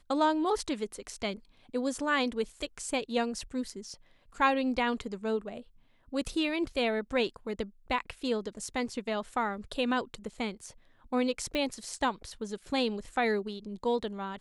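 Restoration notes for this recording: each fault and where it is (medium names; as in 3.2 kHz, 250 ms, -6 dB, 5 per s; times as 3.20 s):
11.55 s: pop -20 dBFS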